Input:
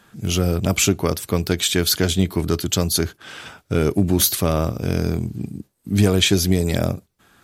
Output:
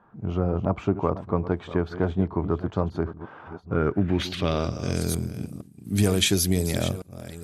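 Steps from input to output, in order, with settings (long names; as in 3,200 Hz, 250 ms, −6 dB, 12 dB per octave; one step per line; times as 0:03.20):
delay that plays each chunk backwards 468 ms, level −13 dB
low-pass filter sweep 990 Hz → 11,000 Hz, 0:03.63–0:05.21
level −5.5 dB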